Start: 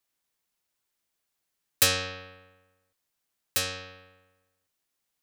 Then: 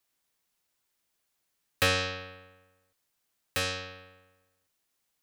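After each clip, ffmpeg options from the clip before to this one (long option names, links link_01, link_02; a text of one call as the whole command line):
ffmpeg -i in.wav -filter_complex "[0:a]acrossover=split=3200[link_01][link_02];[link_02]acompressor=threshold=-35dB:ratio=4:attack=1:release=60[link_03];[link_01][link_03]amix=inputs=2:normalize=0,volume=2.5dB" out.wav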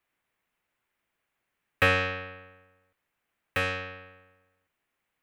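ffmpeg -i in.wav -af "highshelf=frequency=3300:width_type=q:width=1.5:gain=-12,volume=3dB" out.wav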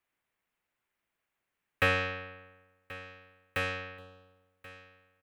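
ffmpeg -i in.wav -af "aecho=1:1:1082|2164:0.126|0.0352,volume=-4dB" out.wav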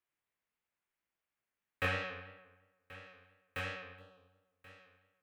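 ffmpeg -i in.wav -af "flanger=delay=16:depth=7:speed=2.9,volume=-4.5dB" out.wav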